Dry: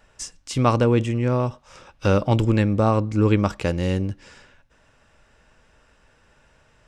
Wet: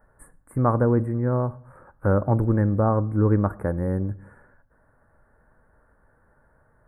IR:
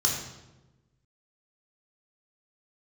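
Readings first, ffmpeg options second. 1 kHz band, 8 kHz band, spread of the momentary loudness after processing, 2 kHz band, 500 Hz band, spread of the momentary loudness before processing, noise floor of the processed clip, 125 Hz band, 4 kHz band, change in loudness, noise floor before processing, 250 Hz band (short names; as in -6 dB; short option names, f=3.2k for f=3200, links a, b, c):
-2.5 dB, n/a, 8 LU, -7.0 dB, -2.0 dB, 10 LU, -63 dBFS, -1.0 dB, under -40 dB, -2.0 dB, -59 dBFS, -2.0 dB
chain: -filter_complex "[0:a]asuperstop=centerf=4300:order=12:qfactor=0.54,asplit=2[a][b];[1:a]atrim=start_sample=2205,afade=t=out:st=0.28:d=0.01,atrim=end_sample=12789[c];[b][c]afir=irnorm=-1:irlink=0,volume=-28dB[d];[a][d]amix=inputs=2:normalize=0,volume=-2dB"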